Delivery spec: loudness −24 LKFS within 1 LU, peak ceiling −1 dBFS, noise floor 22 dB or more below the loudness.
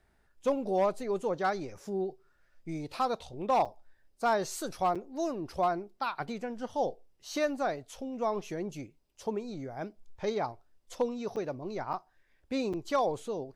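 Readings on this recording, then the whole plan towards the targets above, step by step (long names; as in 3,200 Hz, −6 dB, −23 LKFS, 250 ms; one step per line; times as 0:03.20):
share of clipped samples 0.2%; peaks flattened at −20.0 dBFS; number of dropouts 5; longest dropout 6.2 ms; integrated loudness −33.5 LKFS; sample peak −20.0 dBFS; target loudness −24.0 LKFS
→ clipped peaks rebuilt −20 dBFS
repair the gap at 0:03.65/0:04.95/0:11.36/0:11.93/0:12.73, 6.2 ms
level +9.5 dB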